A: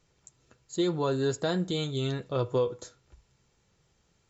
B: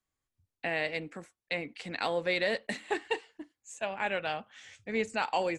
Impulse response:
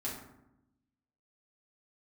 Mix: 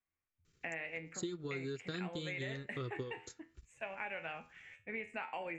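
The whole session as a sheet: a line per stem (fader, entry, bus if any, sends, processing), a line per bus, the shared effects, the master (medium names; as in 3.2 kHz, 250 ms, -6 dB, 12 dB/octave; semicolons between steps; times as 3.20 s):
-4.0 dB, 0.45 s, no send, high-order bell 720 Hz -15.5 dB 1.1 oct; transient shaper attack +4 dB, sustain -10 dB
-1.5 dB, 0.00 s, no send, resonant high shelf 3.2 kHz -10.5 dB, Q 3; feedback comb 82 Hz, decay 0.32 s, harmonics all, mix 70%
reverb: none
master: compression 6:1, threshold -38 dBFS, peak gain reduction 13.5 dB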